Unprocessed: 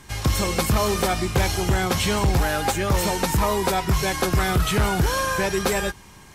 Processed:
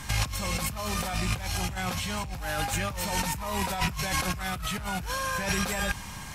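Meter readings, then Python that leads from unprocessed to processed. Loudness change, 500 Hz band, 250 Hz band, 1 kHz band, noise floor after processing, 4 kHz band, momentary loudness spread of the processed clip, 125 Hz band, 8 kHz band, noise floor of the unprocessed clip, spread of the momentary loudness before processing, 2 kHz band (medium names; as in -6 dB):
-8.0 dB, -13.0 dB, -9.0 dB, -7.5 dB, -40 dBFS, -5.5 dB, 4 LU, -9.5 dB, -5.0 dB, -46 dBFS, 2 LU, -5.0 dB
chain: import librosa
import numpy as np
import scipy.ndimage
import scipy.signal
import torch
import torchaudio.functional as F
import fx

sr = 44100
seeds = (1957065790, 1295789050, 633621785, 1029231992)

y = fx.rattle_buzz(x, sr, strikes_db=-32.0, level_db=-25.0)
y = fx.peak_eq(y, sr, hz=380.0, db=-13.0, octaves=0.59)
y = fx.over_compress(y, sr, threshold_db=-31.0, ratio=-1.0)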